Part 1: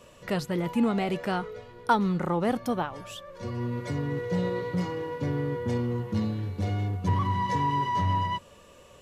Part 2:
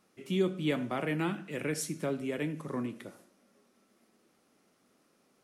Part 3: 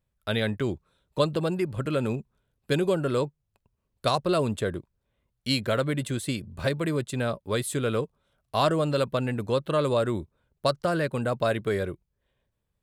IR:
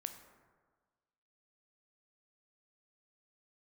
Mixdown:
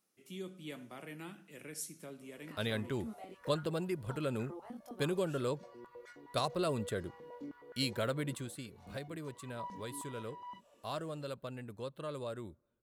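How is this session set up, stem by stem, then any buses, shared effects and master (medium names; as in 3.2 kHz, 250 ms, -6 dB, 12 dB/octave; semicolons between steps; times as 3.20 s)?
-14.5 dB, 2.20 s, no send, compression 6:1, threshold -33 dBFS, peak gain reduction 15 dB; chorus 0.42 Hz, delay 20 ms, depth 2.7 ms; step-sequenced high-pass 9.6 Hz 210–1500 Hz
-17.0 dB, 0.00 s, send -14.5 dB, treble shelf 3.3 kHz +8 dB
8.32 s -10 dB -> 8.55 s -17.5 dB, 2.30 s, send -22.5 dB, none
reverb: on, RT60 1.5 s, pre-delay 13 ms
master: treble shelf 9.3 kHz +9 dB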